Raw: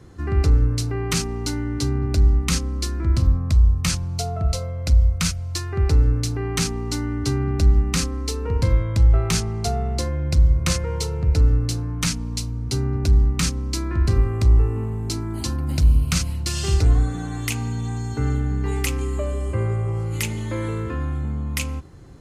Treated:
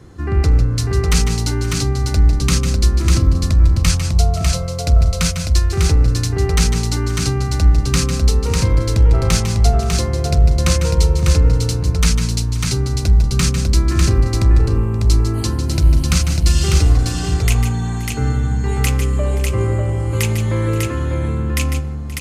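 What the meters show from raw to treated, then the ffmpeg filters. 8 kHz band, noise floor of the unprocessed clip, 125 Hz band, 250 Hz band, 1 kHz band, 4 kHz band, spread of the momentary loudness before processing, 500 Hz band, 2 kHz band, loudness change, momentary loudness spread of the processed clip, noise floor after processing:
+6.0 dB, -28 dBFS, +5.5 dB, +5.0 dB, +6.0 dB, +6.0 dB, 8 LU, +5.5 dB, +6.0 dB, +5.5 dB, 5 LU, -22 dBFS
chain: -filter_complex "[0:a]asplit=2[s0][s1];[s1]aeval=exprs='clip(val(0),-1,0.15)':c=same,volume=0.596[s2];[s0][s2]amix=inputs=2:normalize=0,aecho=1:1:149|155|527|598:0.299|0.251|0.112|0.631"

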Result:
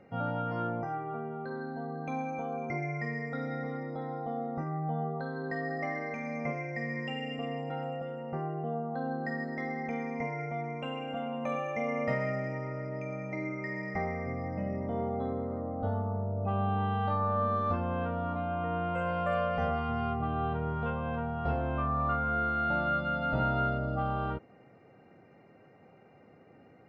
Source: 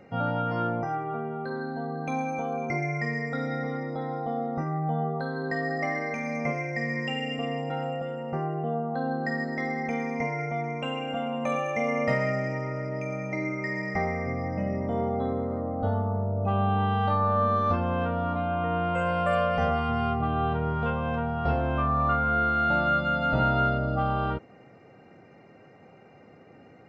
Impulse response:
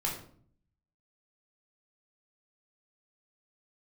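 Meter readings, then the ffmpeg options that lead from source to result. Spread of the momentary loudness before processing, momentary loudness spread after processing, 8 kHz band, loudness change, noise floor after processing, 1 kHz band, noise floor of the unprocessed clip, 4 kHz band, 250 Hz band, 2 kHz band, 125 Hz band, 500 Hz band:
8 LU, 8 LU, no reading, -5.5 dB, -58 dBFS, -5.5 dB, -53 dBFS, -8.0 dB, -5.0 dB, -6.0 dB, -5.0 dB, -5.0 dB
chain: -af "aemphasis=mode=reproduction:type=50kf,volume=0.562"

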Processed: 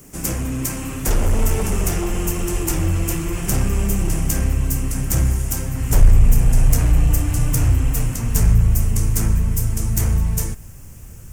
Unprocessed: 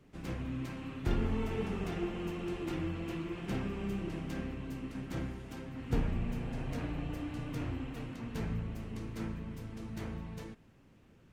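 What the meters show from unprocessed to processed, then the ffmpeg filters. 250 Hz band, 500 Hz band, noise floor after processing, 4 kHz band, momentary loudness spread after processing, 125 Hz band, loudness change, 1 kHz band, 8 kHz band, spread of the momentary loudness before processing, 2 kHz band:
+11.0 dB, +11.0 dB, -37 dBFS, +15.5 dB, 7 LU, +20.0 dB, +18.5 dB, +13.0 dB, +33.5 dB, 8 LU, +13.0 dB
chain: -af "aeval=exprs='0.119*sin(PI/2*3.55*val(0)/0.119)':c=same,asubboost=boost=7.5:cutoff=92,aexciter=amount=15.4:drive=2.9:freq=5800"

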